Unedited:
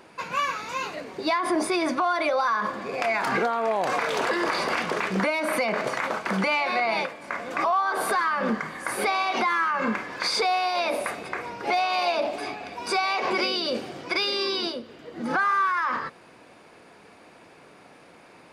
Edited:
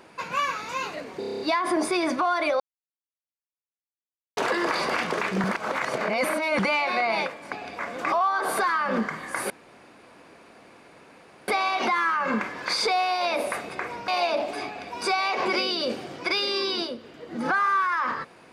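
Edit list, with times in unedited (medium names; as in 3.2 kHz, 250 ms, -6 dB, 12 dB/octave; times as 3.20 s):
1.19 s: stutter 0.03 s, 8 plays
2.39–4.16 s: mute
5.23–6.38 s: reverse
9.02 s: insert room tone 1.98 s
11.62–11.93 s: delete
12.51–12.78 s: copy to 7.31 s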